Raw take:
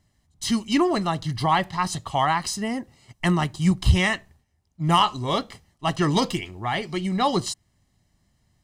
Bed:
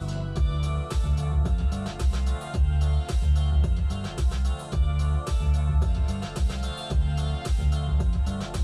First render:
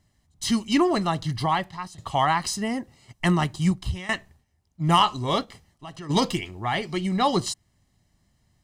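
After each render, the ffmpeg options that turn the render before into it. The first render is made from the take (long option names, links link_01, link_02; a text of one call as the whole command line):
ffmpeg -i in.wav -filter_complex "[0:a]asplit=3[link_01][link_02][link_03];[link_01]afade=type=out:start_time=5.44:duration=0.02[link_04];[link_02]acompressor=threshold=-41dB:ratio=3:attack=3.2:release=140:knee=1:detection=peak,afade=type=in:start_time=5.44:duration=0.02,afade=type=out:start_time=6.09:duration=0.02[link_05];[link_03]afade=type=in:start_time=6.09:duration=0.02[link_06];[link_04][link_05][link_06]amix=inputs=3:normalize=0,asplit=3[link_07][link_08][link_09];[link_07]atrim=end=1.98,asetpts=PTS-STARTPTS,afade=type=out:start_time=1.31:duration=0.67:silence=0.0944061[link_10];[link_08]atrim=start=1.98:end=4.09,asetpts=PTS-STARTPTS,afade=type=in:duration=0.004:curve=hsin:silence=0.0944061,afade=type=out:start_time=1.64:duration=0.47:curve=qua:silence=0.141254[link_11];[link_09]atrim=start=4.09,asetpts=PTS-STARTPTS,afade=type=in:duration=0.004:curve=hsin:silence=0.141254[link_12];[link_10][link_11][link_12]concat=n=3:v=0:a=1" out.wav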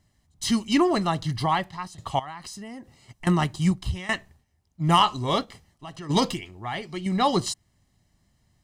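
ffmpeg -i in.wav -filter_complex "[0:a]asettb=1/sr,asplit=3[link_01][link_02][link_03];[link_01]atrim=end=2.194[link_04];[link_02]atrim=start=2.19:end=3.27,asetpts=PTS-STARTPTS,afade=type=in:duration=0.004:curve=qsin,afade=type=out:start_time=1.076:duration=0.004:curve=qsin,acompressor=threshold=-38dB:ratio=4:attack=3.2:release=140:knee=1:detection=peak[link_05];[link_03]atrim=start=3.266[link_06];[link_04][link_05]acrossfade=duration=0.004:curve1=hsin:curve2=qsin[link_07];[link_07][link_06]acrossfade=duration=0.004:curve1=qsin:curve2=hsin,asplit=3[link_08][link_09][link_10];[link_08]atrim=end=6.342[link_11];[link_09]atrim=start=6.338:end=7.062,asetpts=PTS-STARTPTS,volume=-5.5dB[link_12];[link_10]atrim=start=7.058[link_13];[link_11][link_12]acrossfade=duration=0.004:curve1=hsin:curve2=hsin[link_14];[link_14][link_13]acrossfade=duration=0.004:curve1=hsin:curve2=hsin" out.wav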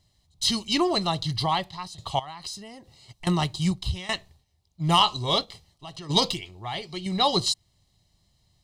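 ffmpeg -i in.wav -af "equalizer=frequency=250:width_type=o:width=0.67:gain=-8,equalizer=frequency=1600:width_type=o:width=0.67:gain=-9,equalizer=frequency=4000:width_type=o:width=0.67:gain=10" out.wav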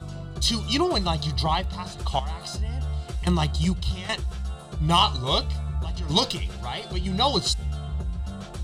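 ffmpeg -i in.wav -i bed.wav -filter_complex "[1:a]volume=-6dB[link_01];[0:a][link_01]amix=inputs=2:normalize=0" out.wav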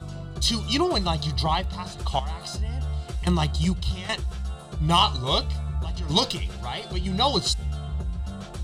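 ffmpeg -i in.wav -af anull out.wav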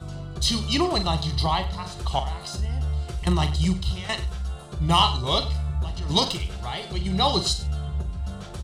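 ffmpeg -i in.wav -filter_complex "[0:a]asplit=2[link_01][link_02];[link_02]adelay=43,volume=-10dB[link_03];[link_01][link_03]amix=inputs=2:normalize=0,aecho=1:1:96:0.158" out.wav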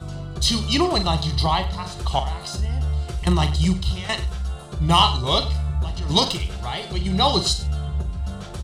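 ffmpeg -i in.wav -af "volume=3dB" out.wav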